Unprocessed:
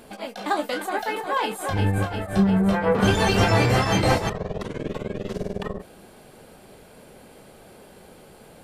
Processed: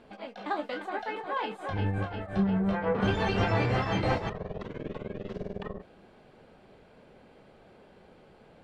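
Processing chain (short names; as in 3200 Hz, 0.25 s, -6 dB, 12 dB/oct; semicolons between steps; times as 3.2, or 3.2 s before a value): LPF 3400 Hz 12 dB/oct; gain -7.5 dB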